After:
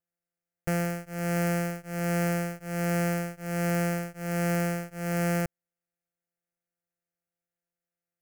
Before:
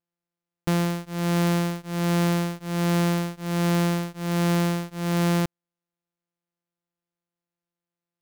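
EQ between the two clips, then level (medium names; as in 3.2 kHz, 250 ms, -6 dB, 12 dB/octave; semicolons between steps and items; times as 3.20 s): static phaser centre 1 kHz, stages 6; 0.0 dB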